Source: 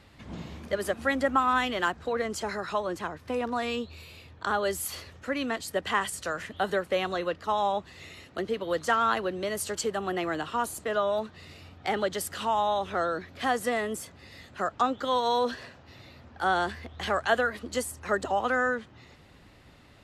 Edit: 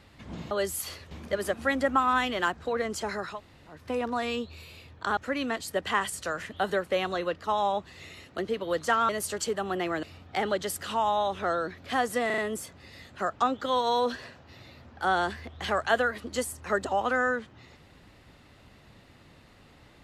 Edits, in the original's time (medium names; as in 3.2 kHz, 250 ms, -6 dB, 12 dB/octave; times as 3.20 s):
2.73–3.14 s: room tone, crossfade 0.16 s
4.57–5.17 s: move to 0.51 s
9.09–9.46 s: delete
10.40–11.54 s: delete
13.77 s: stutter 0.04 s, 4 plays